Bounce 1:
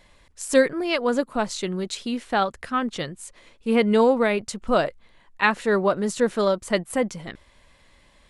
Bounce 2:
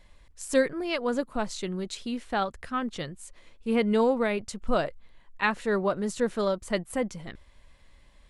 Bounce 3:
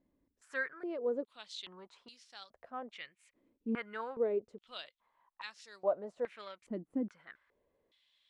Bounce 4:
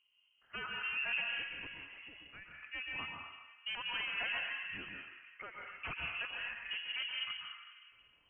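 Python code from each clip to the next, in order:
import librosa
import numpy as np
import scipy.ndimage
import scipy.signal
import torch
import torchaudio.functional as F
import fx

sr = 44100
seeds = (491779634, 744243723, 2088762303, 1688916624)

y1 = fx.low_shelf(x, sr, hz=85.0, db=11.0)
y1 = y1 * librosa.db_to_amplitude(-6.0)
y2 = fx.filter_held_bandpass(y1, sr, hz=2.4, low_hz=280.0, high_hz=5300.0)
y3 = 10.0 ** (-35.5 / 20.0) * (np.abs((y2 / 10.0 ** (-35.5 / 20.0) + 3.0) % 4.0 - 2.0) - 1.0)
y3 = fx.rev_plate(y3, sr, seeds[0], rt60_s=1.9, hf_ratio=0.3, predelay_ms=110, drr_db=-1.0)
y3 = fx.freq_invert(y3, sr, carrier_hz=3100)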